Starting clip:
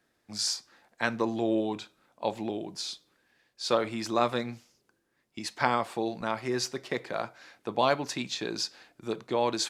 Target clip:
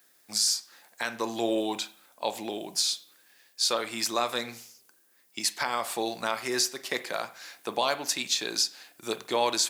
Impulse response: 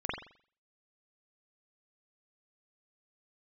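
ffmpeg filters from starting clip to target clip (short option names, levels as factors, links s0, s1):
-filter_complex "[0:a]aemphasis=mode=production:type=riaa,alimiter=limit=0.126:level=0:latency=1:release=366,asplit=2[s0][s1];[1:a]atrim=start_sample=2205[s2];[s1][s2]afir=irnorm=-1:irlink=0,volume=0.133[s3];[s0][s3]amix=inputs=2:normalize=0,volume=1.41"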